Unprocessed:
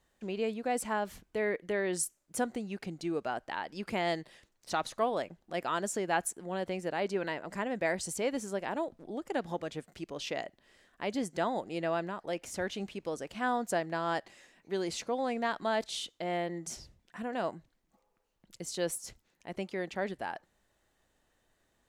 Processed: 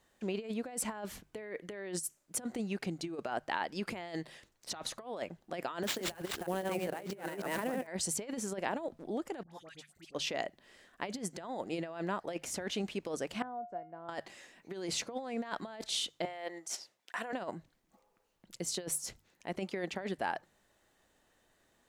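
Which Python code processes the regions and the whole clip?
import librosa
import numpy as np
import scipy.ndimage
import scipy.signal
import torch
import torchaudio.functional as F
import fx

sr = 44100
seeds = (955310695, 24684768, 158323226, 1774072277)

y = fx.chain(x, sr, fx.reverse_delay(ms=159, wet_db=-1.0),
    fx.sample_hold(seeds[0], rate_hz=11000.0, jitter_pct=20),
    fx.band_widen(depth_pct=70), at=(5.83, 7.87))
y = fx.chain(y, sr, fx.tone_stack(knobs='5-5-5'),
    fx.dispersion(late='highs', ms=75.0, hz=1200.0), at=(9.43, 10.15))
y = fx.chain(y, sr, fx.lowpass(hz=1000.0, slope=12),
    fx.comb_fb(f0_hz=710.0, decay_s=0.31, harmonics='all', damping=0.0, mix_pct=90),
    fx.band_squash(depth_pct=40), at=(13.42, 14.09))
y = fx.chain(y, sr, fx.highpass(hz=590.0, slope=12),
    fx.transient(attack_db=5, sustain_db=-8),
    fx.over_compress(threshold_db=-44.0, ratio=-1.0), at=(16.25, 17.33))
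y = fx.over_compress(y, sr, threshold_db=-36.0, ratio=-0.5)
y = fx.low_shelf(y, sr, hz=75.0, db=-7.0)
y = fx.hum_notches(y, sr, base_hz=50, count=3)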